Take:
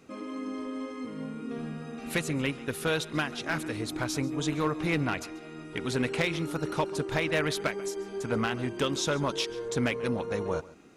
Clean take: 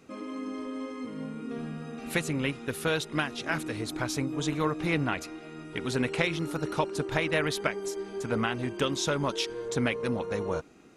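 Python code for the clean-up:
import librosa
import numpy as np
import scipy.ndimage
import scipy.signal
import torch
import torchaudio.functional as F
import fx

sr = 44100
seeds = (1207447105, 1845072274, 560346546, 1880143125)

y = fx.fix_declip(x, sr, threshold_db=-19.5)
y = fx.fix_echo_inverse(y, sr, delay_ms=138, level_db=-19.5)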